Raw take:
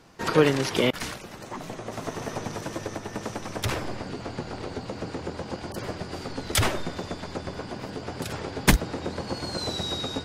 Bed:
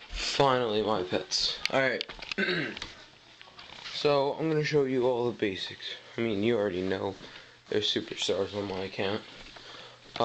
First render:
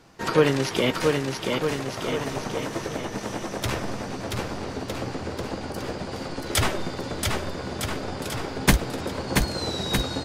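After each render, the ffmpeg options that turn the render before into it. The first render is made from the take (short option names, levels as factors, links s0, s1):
-filter_complex "[0:a]asplit=2[s0][s1];[s1]adelay=15,volume=0.251[s2];[s0][s2]amix=inputs=2:normalize=0,aecho=1:1:680|1258|1749|2167|2522:0.631|0.398|0.251|0.158|0.1"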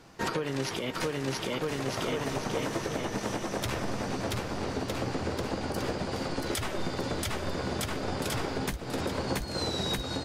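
-af "acompressor=threshold=0.0631:ratio=6,alimiter=limit=0.1:level=0:latency=1:release=279"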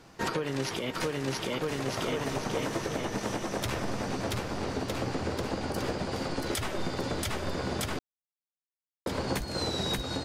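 -filter_complex "[0:a]asplit=3[s0][s1][s2];[s0]atrim=end=7.99,asetpts=PTS-STARTPTS,afade=t=out:st=7.986:d=0.004:c=hsin[s3];[s1]atrim=start=7.99:end=9.06,asetpts=PTS-STARTPTS,volume=0[s4];[s2]atrim=start=9.06,asetpts=PTS-STARTPTS,afade=t=in:d=0.004:c=hsin[s5];[s3][s4][s5]concat=n=3:v=0:a=1"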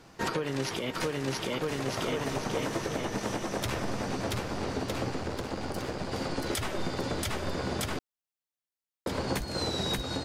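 -filter_complex "[0:a]asettb=1/sr,asplit=3[s0][s1][s2];[s0]atrim=end=5.104[s3];[s1]atrim=start=5.1:end=6.12,asetpts=PTS-STARTPTS,afade=t=in:d=0.004:c=qsin,afade=t=out:st=1.016:d=0.004:c=qsin,aeval=exprs='if(lt(val(0),0),0.447*val(0),val(0))':c=same[s4];[s2]atrim=start=6.116[s5];[s3][s4]acrossfade=d=0.004:c1=hsin:c2=qsin[s6];[s6][s5]acrossfade=d=0.004:c1=qsin:c2=hsin"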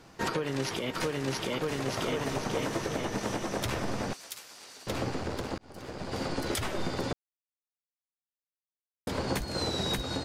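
-filter_complex "[0:a]asettb=1/sr,asplit=3[s0][s1][s2];[s0]atrim=end=4.134[s3];[s1]atrim=start=4.13:end=4.87,asetpts=PTS-STARTPTS,afade=t=in:d=0.004:c=qsin,afade=t=out:st=0.736:d=0.004:c=qsin,aderivative[s4];[s2]atrim=start=4.866[s5];[s3][s4]acrossfade=d=0.004:c1=hsin:c2=qsin[s6];[s6][s5]acrossfade=d=0.004:c1=qsin:c2=hsin,asplit=4[s7][s8][s9][s10];[s7]atrim=end=5.58,asetpts=PTS-STARTPTS,afade=t=out:st=5.576:d=0.004:c=hsin[s11];[s8]atrim=start=5.58:end=7.13,asetpts=PTS-STARTPTS,afade=t=in:d=0.63,afade=t=out:st=1.546:d=0.004:c=hsin[s12];[s9]atrim=start=7.13:end=9.07,asetpts=PTS-STARTPTS,volume=0[s13];[s10]atrim=start=9.07,asetpts=PTS-STARTPTS,afade=t=in:d=0.004:c=hsin[s14];[s11][s12][s13][s14]concat=n=4:v=0:a=1"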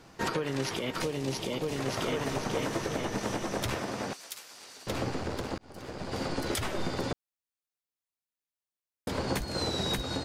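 -filter_complex "[0:a]asettb=1/sr,asplit=3[s0][s1][s2];[s0]atrim=end=1.024[s3];[s1]atrim=start=1.02:end=1.76,asetpts=PTS-STARTPTS,afade=t=in:d=0.004:c=qsin,afade=t=out:st=0.736:d=0.004:c=qsin,equalizer=f=1500:w=1.5:g=-10[s4];[s2]atrim=start=1.756[s5];[s3][s4]acrossfade=d=0.004:c1=hsin:c2=qsin[s6];[s6][s5]acrossfade=d=0.004:c1=qsin:c2=hsin,asettb=1/sr,asplit=3[s7][s8][s9];[s7]atrim=end=3.754[s10];[s8]atrim=start=3.75:end=4.54,asetpts=PTS-STARTPTS,afade=t=in:d=0.004:c=qsin,afade=t=out:st=0.786:d=0.004:c=qsin,highpass=f=190:p=1[s11];[s9]atrim=start=4.536[s12];[s10][s11]acrossfade=d=0.004:c1=hsin:c2=qsin[s13];[s13][s12]acrossfade=d=0.004:c1=qsin:c2=hsin"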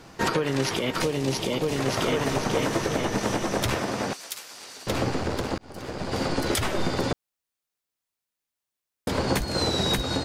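-af "volume=2.11"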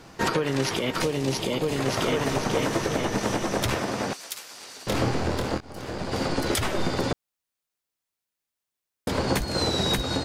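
-filter_complex "[0:a]asettb=1/sr,asplit=3[s0][s1][s2];[s0]atrim=end=1.414[s3];[s1]atrim=start=1.41:end=1.85,asetpts=PTS-STARTPTS,afade=t=in:d=0.004:c=qsin,afade=t=out:st=0.436:d=0.004:c=qsin,bandreject=f=5700:w=9.9[s4];[s2]atrim=start=1.846[s5];[s3][s4]acrossfade=d=0.004:c1=hsin:c2=qsin[s6];[s6][s5]acrossfade=d=0.004:c1=qsin:c2=hsin,asettb=1/sr,asplit=3[s7][s8][s9];[s7]atrim=end=4.894[s10];[s8]atrim=start=4.89:end=6,asetpts=PTS-STARTPTS,afade=t=in:d=0.004:c=qsin,afade=t=out:st=1.106:d=0.004:c=qsin,asplit=2[s11][s12];[s12]adelay=25,volume=0.531[s13];[s11][s13]amix=inputs=2:normalize=0,atrim=end_sample=48951[s14];[s9]atrim=start=5.996[s15];[s10][s14]acrossfade=d=0.004:c1=hsin:c2=qsin[s16];[s16][s15]acrossfade=d=0.004:c1=qsin:c2=hsin"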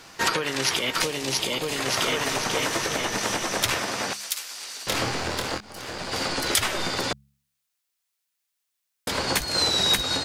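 -af "tiltshelf=f=860:g=-7,bandreject=f=69.7:t=h:w=4,bandreject=f=139.4:t=h:w=4,bandreject=f=209.1:t=h:w=4"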